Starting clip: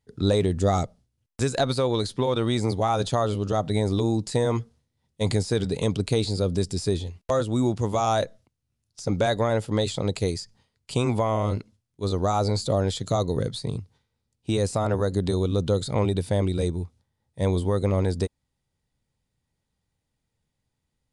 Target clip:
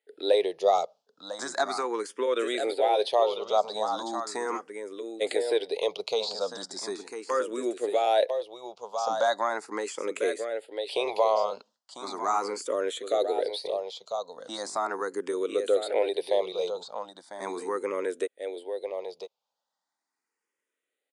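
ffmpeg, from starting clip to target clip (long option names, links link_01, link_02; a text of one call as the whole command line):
ffmpeg -i in.wav -filter_complex "[0:a]highpass=frequency=420:width=0.5412,highpass=frequency=420:width=1.3066,highshelf=frequency=5000:gain=-7.5,aecho=1:1:999:0.398,asplit=2[link_01][link_02];[link_02]afreqshift=0.38[link_03];[link_01][link_03]amix=inputs=2:normalize=1,volume=3.5dB" out.wav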